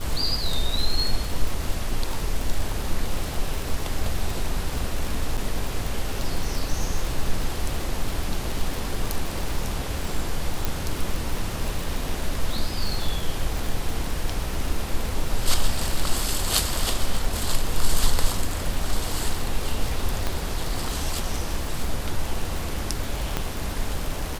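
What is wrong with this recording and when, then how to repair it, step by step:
surface crackle 56 per second −25 dBFS
0:05.37–0:05.38: drop-out 7.3 ms
0:10.65: click
0:20.27: click −11 dBFS
0:23.37: click −9 dBFS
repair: click removal
repair the gap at 0:05.37, 7.3 ms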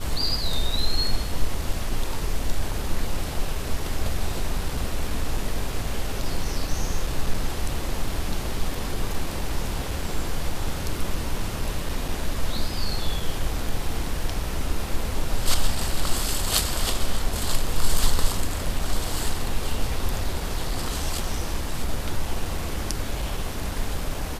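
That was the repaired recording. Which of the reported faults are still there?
0:20.27: click

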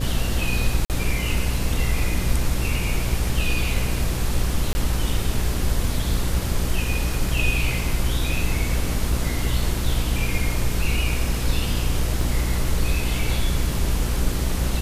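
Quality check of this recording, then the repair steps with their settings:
mains buzz 60 Hz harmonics 9 −26 dBFS
0:00.85–0:00.90: drop-out 48 ms
0:04.73–0:04.75: drop-out 20 ms
0:12.21: drop-out 2.5 ms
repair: hum removal 60 Hz, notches 9
repair the gap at 0:00.85, 48 ms
repair the gap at 0:04.73, 20 ms
repair the gap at 0:12.21, 2.5 ms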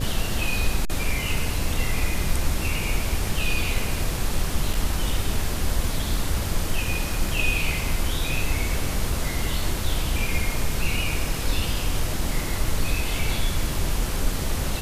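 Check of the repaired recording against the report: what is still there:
none of them is left

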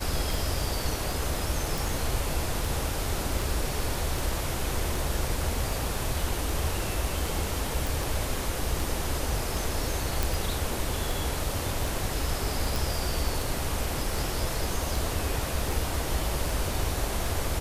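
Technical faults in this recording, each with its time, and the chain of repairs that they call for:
scratch tick 78 rpm
0:01.78: click
0:07.87: click
0:10.23: click
0:12.76: click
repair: click removal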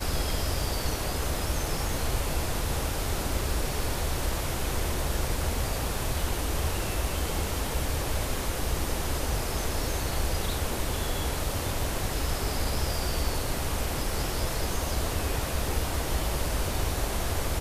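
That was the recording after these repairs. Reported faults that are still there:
none of them is left

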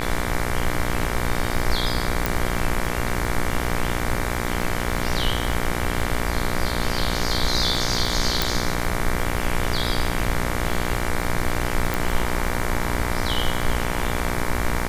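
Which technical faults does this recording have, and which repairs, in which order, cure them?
mains buzz 60 Hz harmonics 39 −27 dBFS
surface crackle 50 per second −29 dBFS
0:02.26: click
0:08.42: click
0:11.94: click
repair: click removal
hum removal 60 Hz, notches 39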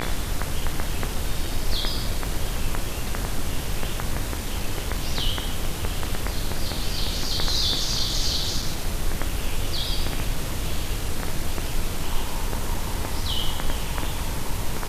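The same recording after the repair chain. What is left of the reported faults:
0:02.26: click
0:11.94: click

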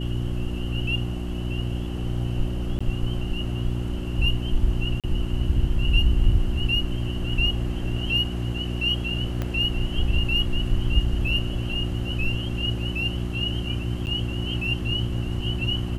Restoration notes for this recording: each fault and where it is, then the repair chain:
mains hum 60 Hz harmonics 6 −29 dBFS
0:02.79–0:02.81: drop-out 15 ms
0:05.00–0:05.04: drop-out 37 ms
0:09.42: click −15 dBFS
0:14.06–0:14.07: drop-out 9.5 ms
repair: click removal
hum removal 60 Hz, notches 6
repair the gap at 0:02.79, 15 ms
repair the gap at 0:05.00, 37 ms
repair the gap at 0:14.06, 9.5 ms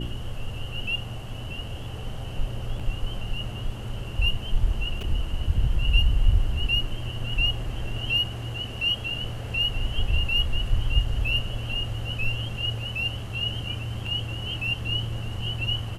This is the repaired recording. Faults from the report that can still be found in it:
0:09.42: click

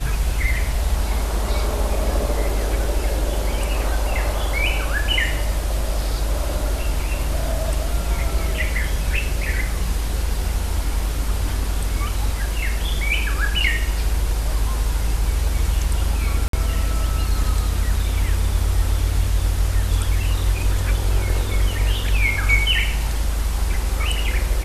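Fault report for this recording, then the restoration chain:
0:16.48–0:16.53: drop-out 53 ms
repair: repair the gap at 0:16.48, 53 ms

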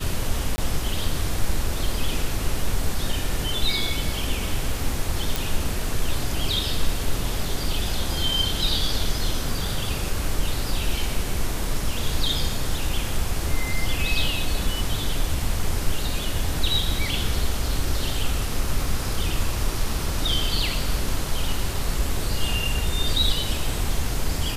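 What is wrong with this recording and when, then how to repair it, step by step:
0:00.56–0:00.58: drop-out 20 ms
0:05.36: click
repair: click removal
repair the gap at 0:00.56, 20 ms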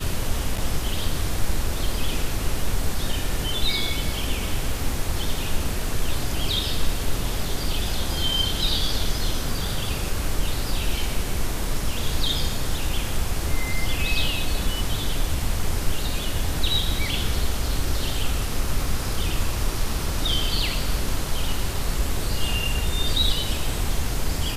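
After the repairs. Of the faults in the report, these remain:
none of them is left

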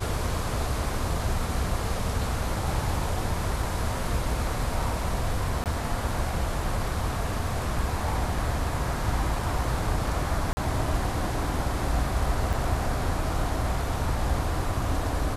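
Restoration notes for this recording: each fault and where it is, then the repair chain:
0:05.64–0:05.66: drop-out 18 ms
0:10.53–0:10.57: drop-out 40 ms
0:12.53–0:12.54: drop-out 5 ms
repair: repair the gap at 0:05.64, 18 ms
repair the gap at 0:10.53, 40 ms
repair the gap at 0:12.53, 5 ms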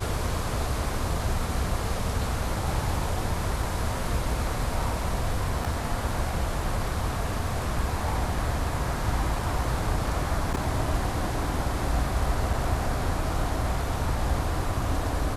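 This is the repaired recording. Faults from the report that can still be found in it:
none of them is left

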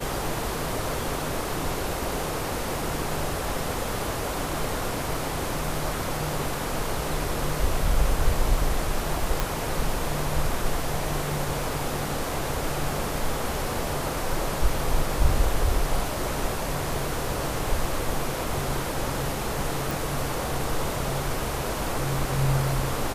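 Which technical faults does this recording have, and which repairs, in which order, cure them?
0:09.40: click
0:19.91: click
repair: click removal

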